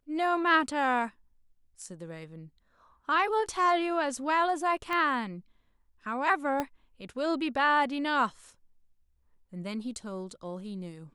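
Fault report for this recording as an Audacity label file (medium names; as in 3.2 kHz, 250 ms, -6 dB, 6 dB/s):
4.930000	4.930000	pop -19 dBFS
6.600000	6.600000	pop -16 dBFS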